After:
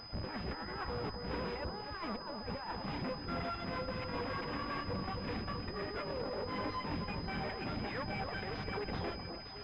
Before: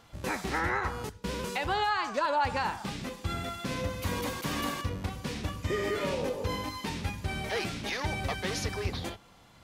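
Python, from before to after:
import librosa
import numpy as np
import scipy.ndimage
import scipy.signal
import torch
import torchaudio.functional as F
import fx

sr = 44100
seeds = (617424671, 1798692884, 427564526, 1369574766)

p1 = fx.dereverb_blind(x, sr, rt60_s=0.73)
p2 = fx.over_compress(p1, sr, threshold_db=-37.0, ratio=-0.5)
p3 = fx.tube_stage(p2, sr, drive_db=41.0, bias=0.75)
p4 = p3 + fx.echo_alternate(p3, sr, ms=260, hz=1300.0, feedback_pct=67, wet_db=-5.5, dry=0)
p5 = fx.pwm(p4, sr, carrier_hz=5000.0)
y = p5 * librosa.db_to_amplitude(5.5)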